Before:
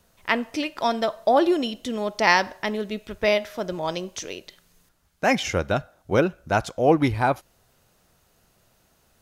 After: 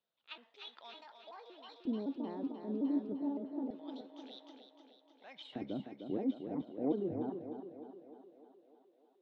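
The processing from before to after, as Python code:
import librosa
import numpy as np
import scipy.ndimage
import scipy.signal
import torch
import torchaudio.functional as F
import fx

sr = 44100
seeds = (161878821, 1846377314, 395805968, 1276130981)

p1 = fx.pitch_trill(x, sr, semitones=5.5, every_ms=187)
p2 = scipy.signal.sosfilt(scipy.signal.butter(2, 110.0, 'highpass', fs=sr, output='sos'), p1)
p3 = librosa.effects.preemphasis(p2, coef=0.8, zi=[0.0])
p4 = fx.over_compress(p3, sr, threshold_db=-45.0, ratio=-1.0)
p5 = p3 + (p4 * 10.0 ** (0.0 / 20.0))
p6 = fx.filter_lfo_bandpass(p5, sr, shape='square', hz=0.27, low_hz=280.0, high_hz=3600.0, q=4.6)
p7 = p6 + fx.echo_thinned(p6, sr, ms=305, feedback_pct=70, hz=270.0, wet_db=-5, dry=0)
p8 = fx.env_lowpass(p7, sr, base_hz=550.0, full_db=-22.0)
y = p8 * 10.0 ** (8.5 / 20.0)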